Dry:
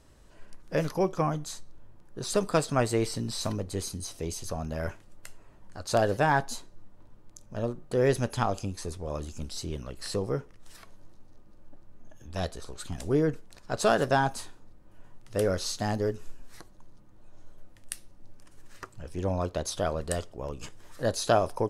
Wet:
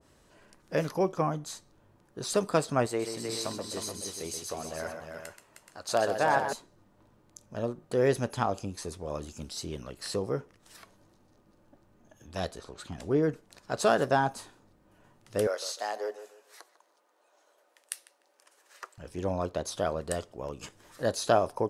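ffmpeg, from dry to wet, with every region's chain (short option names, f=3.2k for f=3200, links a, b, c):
-filter_complex "[0:a]asettb=1/sr,asplit=3[a][b][c];[a]atrim=end=2.864[d];[b]atrim=start=2.86:end=6.53,asetpts=PTS-STARTPTS,afade=t=in:d=0.004:c=qsin,afade=t=out:st=3.666:d=0.004:c=qsin,lowshelf=f=250:g=-11.5,aecho=1:1:129|310|426:0.398|0.473|0.316,atrim=end_sample=161847[e];[c]atrim=start=6.526[f];[d][e]acrossfade=d=0.004:c1=hsin:c2=qsin[g];[g][f]acrossfade=d=0.004:c1=qsin:c2=hsin,asettb=1/sr,asplit=3[h][i][j];[h]atrim=end=12.594[k];[i]atrim=start=12.59:end=13.23,asetpts=PTS-STARTPTS,afade=t=in:d=0.004:c=qsin,afade=t=out:st=0.636:d=0.004:c=qsin,lowpass=f=3.2k:p=1,acompressor=mode=upward:threshold=-37dB:ratio=2.5:attack=3.2:release=140:knee=2.83:detection=peak[l];[j]atrim=start=13.226[m];[k][l]acrossfade=d=0.004:c1=hsin:c2=qsin[n];[n][m]acrossfade=d=0.004:c1=qsin:c2=hsin,asettb=1/sr,asplit=3[o][p][q];[o]atrim=end=15.474[r];[p]atrim=start=15.47:end=18.98,asetpts=PTS-STARTPTS,afade=t=in:d=0.004:c=qsin,afade=t=out:st=3.506:d=0.004:c=qsin,highpass=f=470:w=0.5412,highpass=f=470:w=1.3066,asplit=2[s][t];[t]adelay=149,lowpass=f=2.4k:p=1,volume=-13dB,asplit=2[u][v];[v]adelay=149,lowpass=f=2.4k:p=1,volume=0.31,asplit=2[w][x];[x]adelay=149,lowpass=f=2.4k:p=1,volume=0.31[y];[s][u][w][y]amix=inputs=4:normalize=0,atrim=end_sample=154791[z];[q]atrim=start=18.976[aa];[r][z]acrossfade=d=0.004:c1=hsin:c2=qsin[ab];[ab][aa]acrossfade=d=0.004:c1=qsin:c2=hsin,highpass=f=150:p=1,adynamicequalizer=threshold=0.00794:dfrequency=1600:dqfactor=0.7:tfrequency=1600:tqfactor=0.7:attack=5:release=100:ratio=0.375:range=3:mode=cutabove:tftype=highshelf"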